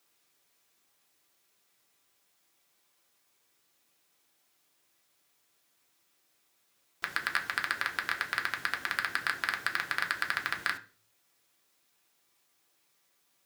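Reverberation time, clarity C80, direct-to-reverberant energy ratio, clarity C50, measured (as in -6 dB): 0.40 s, 20.0 dB, 2.0 dB, 15.0 dB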